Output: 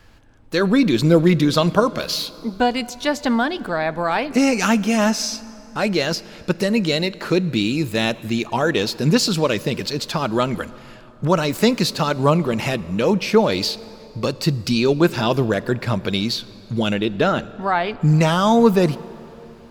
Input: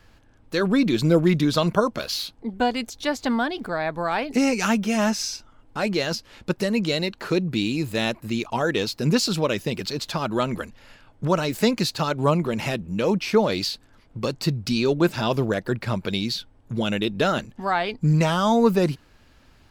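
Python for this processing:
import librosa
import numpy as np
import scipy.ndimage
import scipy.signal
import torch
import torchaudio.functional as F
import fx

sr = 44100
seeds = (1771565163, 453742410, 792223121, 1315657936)

y = fx.high_shelf(x, sr, hz=4300.0, db=-10.5, at=(16.93, 17.92))
y = fx.rev_plate(y, sr, seeds[0], rt60_s=3.6, hf_ratio=0.65, predelay_ms=0, drr_db=18.0)
y = y * 10.0 ** (4.0 / 20.0)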